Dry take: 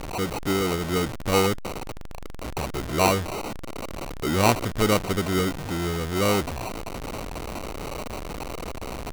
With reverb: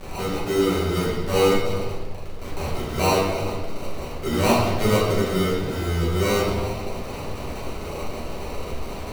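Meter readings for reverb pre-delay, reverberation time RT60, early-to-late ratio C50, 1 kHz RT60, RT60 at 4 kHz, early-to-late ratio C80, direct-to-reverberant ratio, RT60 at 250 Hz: 5 ms, 1.6 s, 0.5 dB, 1.3 s, 1.2 s, 3.0 dB, −8.0 dB, 1.6 s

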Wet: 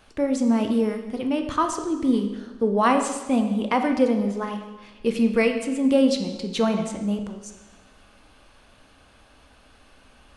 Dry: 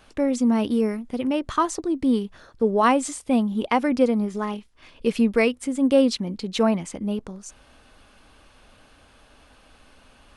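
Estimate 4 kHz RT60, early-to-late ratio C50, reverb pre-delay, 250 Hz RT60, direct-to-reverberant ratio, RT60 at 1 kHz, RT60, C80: 1.1 s, 7.5 dB, 7 ms, 1.1 s, 5.0 dB, 1.2 s, 1.2 s, 9.0 dB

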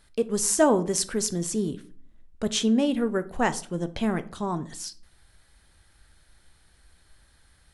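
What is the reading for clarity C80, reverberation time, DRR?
22.0 dB, 0.45 s, 11.5 dB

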